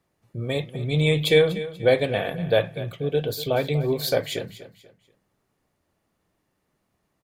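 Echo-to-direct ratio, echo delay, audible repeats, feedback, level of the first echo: −14.5 dB, 242 ms, 3, 33%, −15.0 dB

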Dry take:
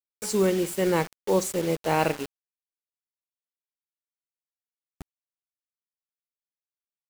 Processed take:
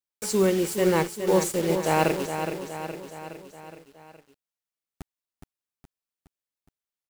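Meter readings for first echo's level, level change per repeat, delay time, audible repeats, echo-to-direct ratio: −8.0 dB, −5.0 dB, 417 ms, 5, −6.5 dB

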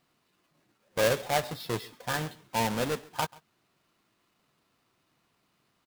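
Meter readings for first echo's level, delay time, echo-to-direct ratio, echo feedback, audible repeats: −23.5 dB, 136 ms, −23.5 dB, repeats not evenly spaced, 1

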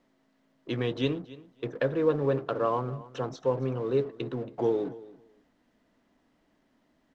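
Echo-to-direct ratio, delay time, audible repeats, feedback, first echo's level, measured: −19.0 dB, 277 ms, 2, 16%, −19.0 dB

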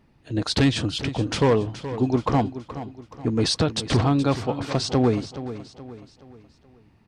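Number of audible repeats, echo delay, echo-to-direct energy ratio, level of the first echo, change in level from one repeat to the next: 3, 424 ms, −12.0 dB, −13.0 dB, −7.5 dB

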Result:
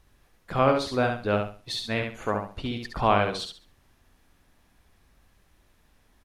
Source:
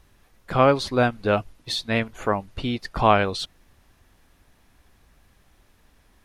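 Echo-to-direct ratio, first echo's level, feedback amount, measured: −4.5 dB, −5.0 dB, 27%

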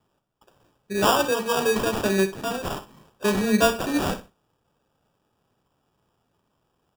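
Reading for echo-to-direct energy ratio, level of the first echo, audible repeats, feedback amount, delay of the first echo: −13.5 dB, −13.5 dB, 2, 19%, 62 ms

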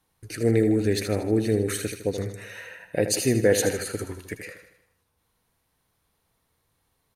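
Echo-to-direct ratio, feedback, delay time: −8.0 dB, 51%, 78 ms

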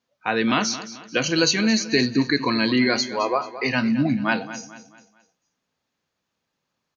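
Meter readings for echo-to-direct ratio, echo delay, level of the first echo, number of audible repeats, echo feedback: −13.0 dB, 219 ms, −14.0 dB, 3, 40%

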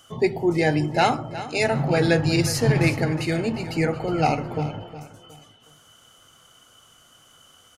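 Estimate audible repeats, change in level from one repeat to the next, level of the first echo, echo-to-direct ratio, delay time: 3, −9.5 dB, −14.0 dB, −13.5 dB, 364 ms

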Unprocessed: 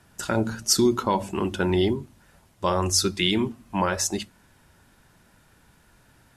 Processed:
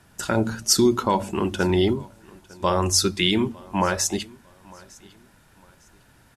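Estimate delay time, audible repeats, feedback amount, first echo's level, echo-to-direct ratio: 904 ms, 2, 30%, −24.0 dB, −23.5 dB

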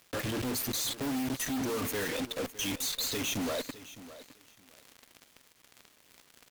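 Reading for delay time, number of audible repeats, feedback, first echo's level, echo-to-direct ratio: 610 ms, 2, 17%, −16.0 dB, −16.0 dB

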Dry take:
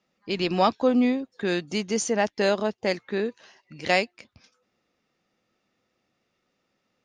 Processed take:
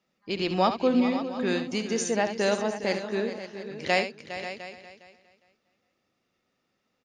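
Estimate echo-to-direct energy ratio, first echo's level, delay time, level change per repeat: −6.0 dB, −10.0 dB, 70 ms, repeats not evenly spaced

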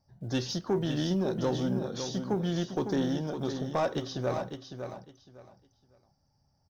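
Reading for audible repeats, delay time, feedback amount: 3, 556 ms, 22%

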